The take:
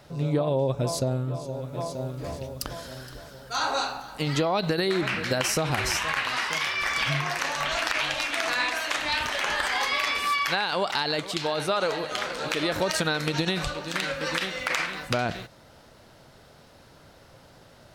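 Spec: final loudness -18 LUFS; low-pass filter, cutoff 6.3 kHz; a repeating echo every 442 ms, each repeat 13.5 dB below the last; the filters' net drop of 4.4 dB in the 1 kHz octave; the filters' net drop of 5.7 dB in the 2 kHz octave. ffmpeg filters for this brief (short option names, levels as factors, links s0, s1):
-af "lowpass=6300,equalizer=f=1000:t=o:g=-4,equalizer=f=2000:t=o:g=-6,aecho=1:1:442|884:0.211|0.0444,volume=3.76"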